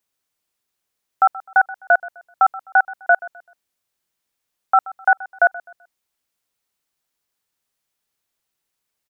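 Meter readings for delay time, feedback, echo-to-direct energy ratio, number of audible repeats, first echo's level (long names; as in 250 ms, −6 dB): 128 ms, 31%, −18.5 dB, 2, −19.0 dB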